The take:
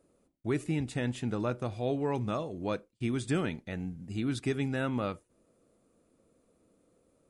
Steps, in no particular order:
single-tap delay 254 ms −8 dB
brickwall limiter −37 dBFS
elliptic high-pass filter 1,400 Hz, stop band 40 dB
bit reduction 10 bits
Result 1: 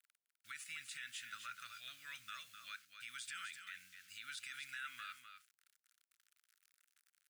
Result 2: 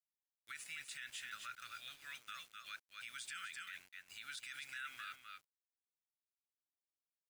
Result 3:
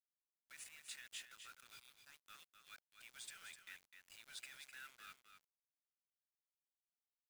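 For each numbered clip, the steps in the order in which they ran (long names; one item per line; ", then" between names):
bit reduction, then elliptic high-pass filter, then brickwall limiter, then single-tap delay
elliptic high-pass filter, then bit reduction, then single-tap delay, then brickwall limiter
brickwall limiter, then elliptic high-pass filter, then bit reduction, then single-tap delay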